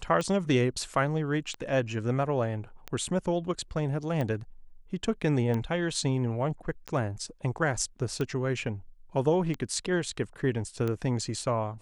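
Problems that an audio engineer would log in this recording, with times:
tick 45 rpm -19 dBFS

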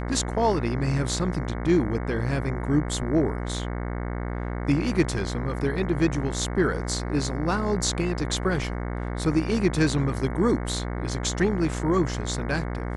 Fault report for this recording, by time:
buzz 60 Hz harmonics 37 -30 dBFS

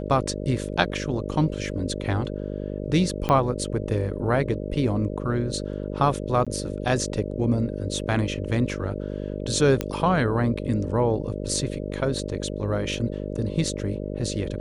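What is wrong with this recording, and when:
buzz 50 Hz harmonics 12 -31 dBFS
3.29 s: pop -10 dBFS
6.45–6.47 s: dropout 16 ms
9.81 s: pop -10 dBFS

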